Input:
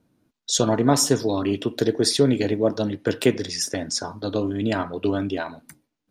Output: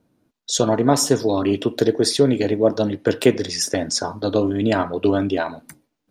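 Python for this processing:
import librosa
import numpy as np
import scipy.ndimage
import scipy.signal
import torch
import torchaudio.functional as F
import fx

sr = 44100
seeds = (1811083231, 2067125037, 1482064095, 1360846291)

p1 = fx.peak_eq(x, sr, hz=580.0, db=3.5, octaves=1.7)
p2 = fx.rider(p1, sr, range_db=3, speed_s=0.5)
p3 = p1 + (p2 * librosa.db_to_amplitude(3.0))
y = p3 * librosa.db_to_amplitude(-6.0)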